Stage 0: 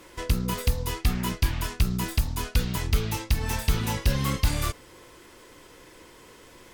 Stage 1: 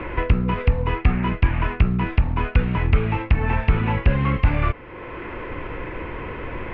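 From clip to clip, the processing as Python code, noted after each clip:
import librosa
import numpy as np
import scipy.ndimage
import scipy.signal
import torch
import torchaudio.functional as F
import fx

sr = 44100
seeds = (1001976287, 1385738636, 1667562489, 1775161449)

y = scipy.signal.sosfilt(scipy.signal.cheby1(4, 1.0, 2500.0, 'lowpass', fs=sr, output='sos'), x)
y = fx.band_squash(y, sr, depth_pct=70)
y = y * librosa.db_to_amplitude(7.5)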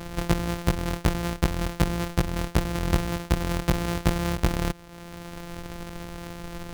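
y = np.r_[np.sort(x[:len(x) // 256 * 256].reshape(-1, 256), axis=1).ravel(), x[len(x) // 256 * 256:]]
y = y * librosa.db_to_amplitude(-6.5)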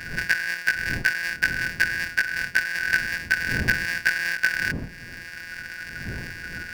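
y = fx.band_shuffle(x, sr, order='3142')
y = fx.dmg_wind(y, sr, seeds[0], corner_hz=190.0, level_db=-38.0)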